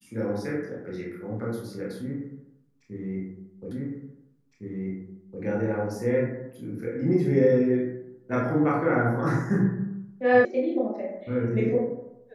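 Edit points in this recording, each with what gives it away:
3.71 repeat of the last 1.71 s
10.45 sound cut off

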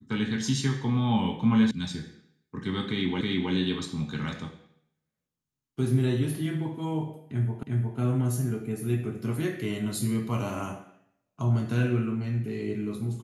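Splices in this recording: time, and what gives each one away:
1.71 sound cut off
3.21 repeat of the last 0.32 s
7.63 repeat of the last 0.36 s

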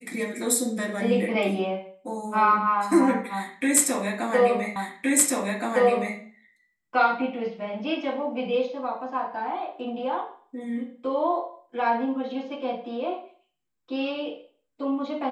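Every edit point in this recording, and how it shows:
4.76 repeat of the last 1.42 s

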